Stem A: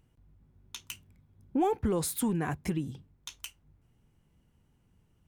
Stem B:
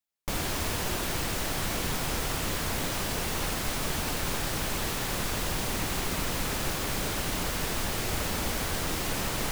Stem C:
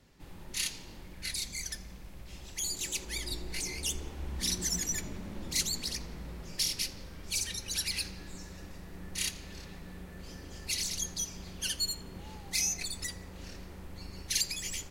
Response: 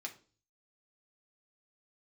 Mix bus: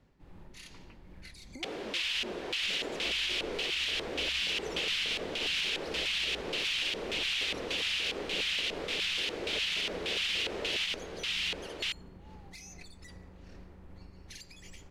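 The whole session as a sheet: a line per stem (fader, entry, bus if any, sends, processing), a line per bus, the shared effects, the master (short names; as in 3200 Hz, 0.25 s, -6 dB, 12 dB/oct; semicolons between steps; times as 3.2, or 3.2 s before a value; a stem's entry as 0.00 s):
-6.0 dB, 0.00 s, bus A, no send, no echo send, elliptic band-pass 240–2100 Hz; comb 5.2 ms
+2.0 dB, 1.35 s, no bus, no send, echo send -3.5 dB, weighting filter D; LFO band-pass square 1.7 Hz 440–2900 Hz
-1.0 dB, 0.00 s, bus A, no send, no echo send, LPF 1500 Hz 6 dB/oct
bus A: 0.0 dB, tremolo 2.5 Hz, depth 43%; compressor 6:1, threshold -45 dBFS, peak gain reduction 17 dB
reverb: off
echo: echo 1.061 s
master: limiter -23 dBFS, peak gain reduction 8 dB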